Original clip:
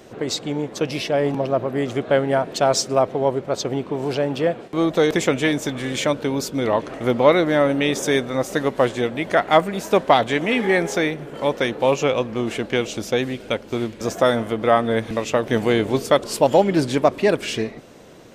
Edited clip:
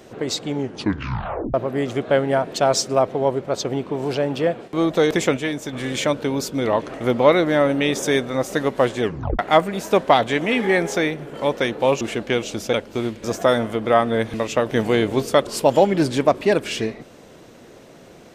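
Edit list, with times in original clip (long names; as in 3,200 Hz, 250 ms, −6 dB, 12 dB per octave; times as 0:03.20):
0:00.54: tape stop 1.00 s
0:05.37–0:05.73: clip gain −5 dB
0:09.02: tape stop 0.37 s
0:12.01–0:12.44: remove
0:13.16–0:13.50: remove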